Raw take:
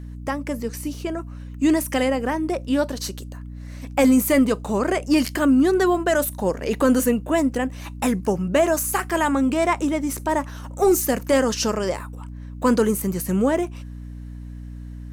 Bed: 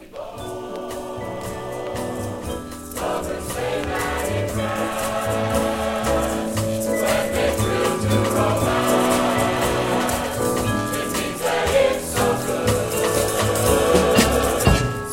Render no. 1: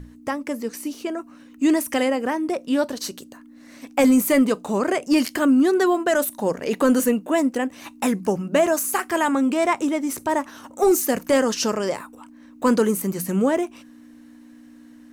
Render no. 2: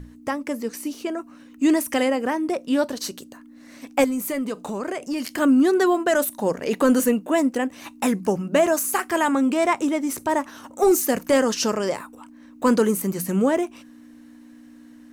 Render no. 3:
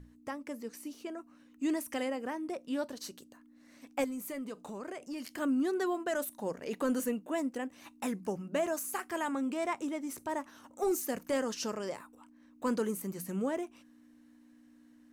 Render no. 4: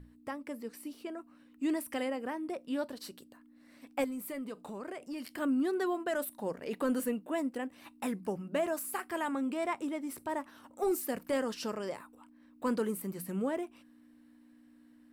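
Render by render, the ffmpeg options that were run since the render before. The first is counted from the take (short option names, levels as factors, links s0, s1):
-af "bandreject=f=60:t=h:w=6,bandreject=f=120:t=h:w=6,bandreject=f=180:t=h:w=6"
-filter_complex "[0:a]asettb=1/sr,asplit=3[s0][s1][s2];[s0]atrim=end=4.044[s3];[s1]atrim=start=4.04:end=5.38,asetpts=PTS-STARTPTS,afade=t=in:d=0.004:c=qsin,afade=t=out:st=1.336:d=0.004:c=qsin,acompressor=threshold=0.0501:ratio=3:attack=3.2:release=140:knee=1:detection=peak[s4];[s2]atrim=start=5.376[s5];[s3][s4]acrossfade=d=0.004:c1=hsin:c2=qsin[s6];[s6][s5]acrossfade=d=0.004:c1=qsin:c2=hsin"
-af "volume=0.211"
-af "equalizer=f=6400:t=o:w=0.32:g=-12"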